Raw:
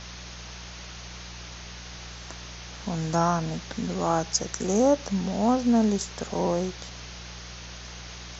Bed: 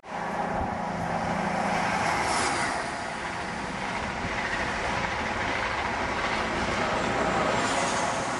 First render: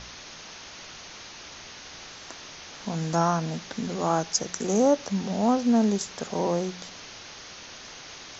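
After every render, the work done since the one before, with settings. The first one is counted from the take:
hum removal 60 Hz, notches 3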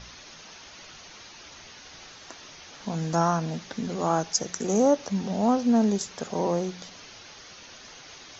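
broadband denoise 6 dB, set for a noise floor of −44 dBFS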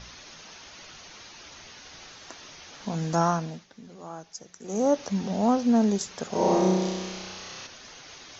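0:03.30–0:04.98: duck −15.5 dB, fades 0.37 s
0:06.29–0:07.67: flutter between parallel walls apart 5.5 metres, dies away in 1.4 s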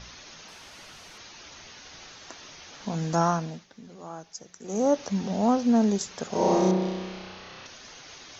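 0:00.48–0:01.18: linear delta modulator 64 kbit/s, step −53 dBFS
0:06.71–0:07.66: high-frequency loss of the air 190 metres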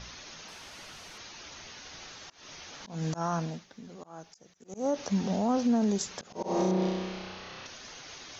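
volume swells 223 ms
brickwall limiter −19.5 dBFS, peak gain reduction 7 dB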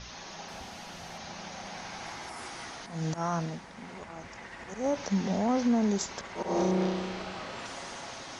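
mix in bed −16.5 dB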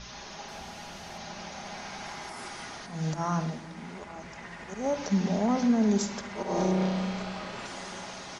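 single-tap delay 1,175 ms −23.5 dB
rectangular room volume 3,200 cubic metres, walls furnished, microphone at 1.3 metres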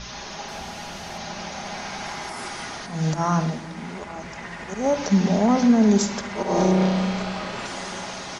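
level +7.5 dB

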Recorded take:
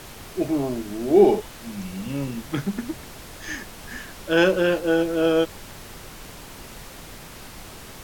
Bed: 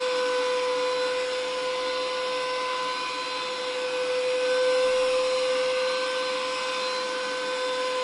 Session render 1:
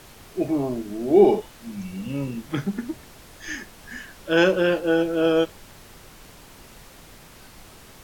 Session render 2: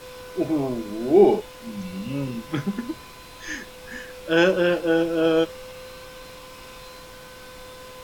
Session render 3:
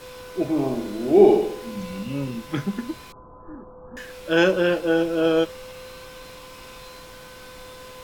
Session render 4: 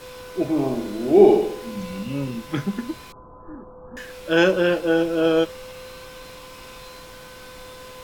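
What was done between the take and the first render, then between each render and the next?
noise reduction from a noise print 6 dB
mix in bed −15.5 dB
0:00.50–0:02.03: flutter between parallel walls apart 11.5 metres, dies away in 0.66 s; 0:03.12–0:03.97: Butterworth low-pass 1,300 Hz 72 dB per octave
level +1 dB

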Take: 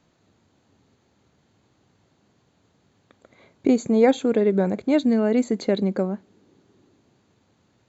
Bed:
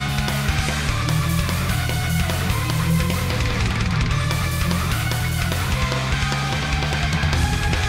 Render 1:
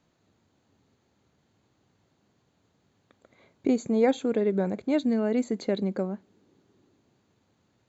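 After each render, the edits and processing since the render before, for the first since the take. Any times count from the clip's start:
level −5.5 dB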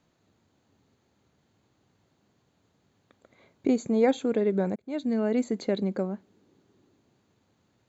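0:04.76–0:05.21: fade in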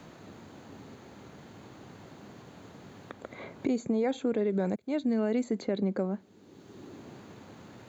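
brickwall limiter −19.5 dBFS, peak gain reduction 7.5 dB
multiband upward and downward compressor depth 70%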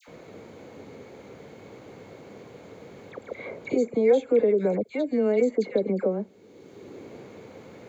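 hollow resonant body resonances 480/2,200 Hz, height 12 dB, ringing for 20 ms
all-pass dispersion lows, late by 77 ms, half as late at 1,400 Hz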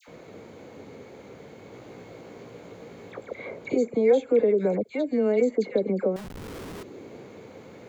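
0:01.72–0:03.25: double-tracking delay 17 ms −4.5 dB
0:06.16–0:06.83: comparator with hysteresis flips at −50.5 dBFS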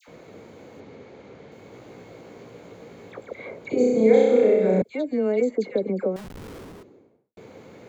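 0:00.80–0:01.52: low-pass filter 5,300 Hz
0:03.74–0:04.82: flutter between parallel walls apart 5.5 metres, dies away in 1.3 s
0:06.30–0:07.37: fade out and dull

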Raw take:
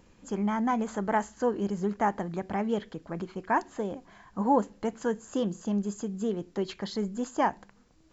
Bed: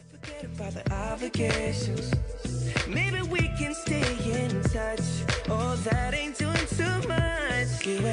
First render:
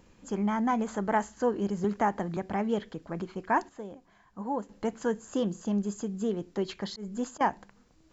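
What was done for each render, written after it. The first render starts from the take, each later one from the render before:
0:01.84–0:02.37: multiband upward and downward compressor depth 40%
0:03.69–0:04.69: clip gain −8.5 dB
0:06.87–0:07.41: volume swells 175 ms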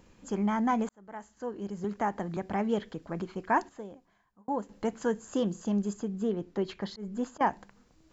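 0:00.89–0:02.61: fade in
0:03.71–0:04.48: fade out
0:05.93–0:07.47: high-shelf EQ 5,100 Hz −11.5 dB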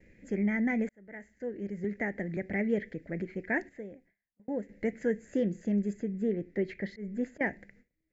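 noise gate with hold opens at −50 dBFS
drawn EQ curve 580 Hz 0 dB, 1,100 Hz −27 dB, 2,000 Hz +13 dB, 3,000 Hz −12 dB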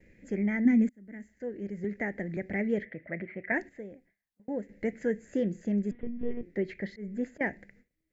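0:00.65–0:01.29: drawn EQ curve 160 Hz 0 dB, 250 Hz +10 dB, 360 Hz −2 dB, 770 Hz −9 dB, 7,300 Hz +2 dB
0:02.85–0:03.52: loudspeaker in its box 110–2,900 Hz, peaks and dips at 180 Hz −3 dB, 280 Hz −6 dB, 430 Hz −7 dB, 620 Hz +7 dB, 1,200 Hz +5 dB, 2,000 Hz +9 dB
0:05.91–0:06.43: one-pitch LPC vocoder at 8 kHz 240 Hz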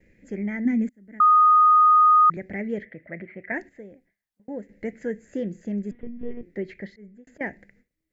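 0:01.20–0:02.30: beep over 1,240 Hz −12 dBFS
0:06.79–0:07.27: fade out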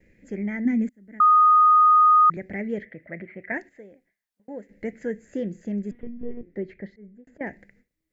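0:03.57–0:04.71: low-shelf EQ 250 Hz −9 dB
0:06.14–0:07.47: high-shelf EQ 2,100 Hz −12 dB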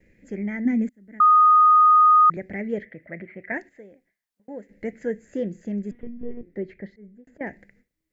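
dynamic equaliser 600 Hz, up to +4 dB, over −31 dBFS, Q 1.1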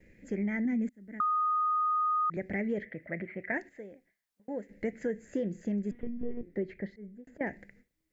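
brickwall limiter −19.5 dBFS, peak gain reduction 8.5 dB
downward compressor 3 to 1, threshold −29 dBFS, peak gain reduction 6 dB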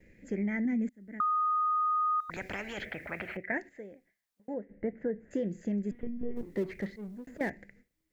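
0:02.20–0:03.37: every bin compressed towards the loudest bin 4 to 1
0:04.54–0:05.31: low-pass filter 1,300 Hz
0:06.36–0:07.50: mu-law and A-law mismatch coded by mu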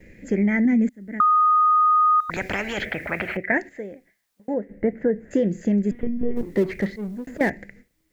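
level +11.5 dB

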